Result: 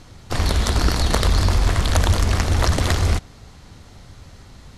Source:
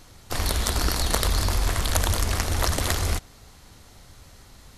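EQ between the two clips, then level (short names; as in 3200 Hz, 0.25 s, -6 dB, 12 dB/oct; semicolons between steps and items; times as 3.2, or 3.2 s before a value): air absorption 52 m; bell 130 Hz +5 dB 2.5 oct; +4.0 dB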